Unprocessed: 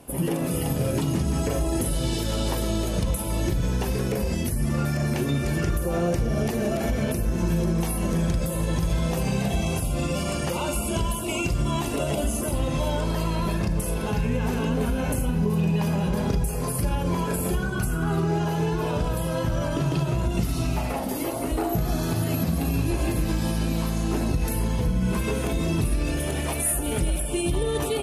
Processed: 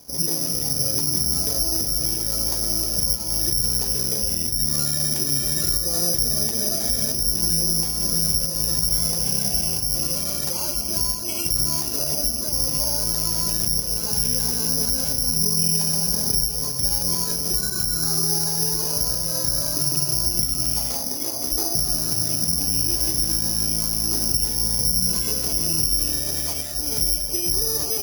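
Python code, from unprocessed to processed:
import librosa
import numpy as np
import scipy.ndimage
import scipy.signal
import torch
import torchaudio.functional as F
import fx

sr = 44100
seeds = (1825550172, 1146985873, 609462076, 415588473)

y = (np.kron(scipy.signal.resample_poly(x, 1, 8), np.eye(8)[0]) * 8)[:len(x)]
y = y * 10.0 ** (-7.0 / 20.0)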